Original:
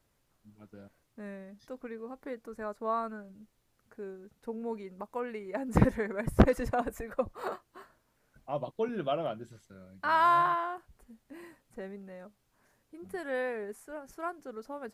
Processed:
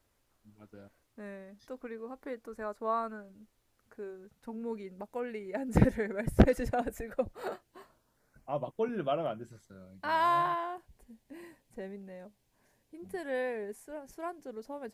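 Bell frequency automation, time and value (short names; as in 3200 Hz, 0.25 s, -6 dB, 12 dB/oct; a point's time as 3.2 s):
bell -12 dB 0.37 oct
4.02 s 160 Hz
4.88 s 1100 Hz
7.65 s 1100 Hz
8.51 s 4100 Hz
9.4 s 4100 Hz
10.05 s 1300 Hz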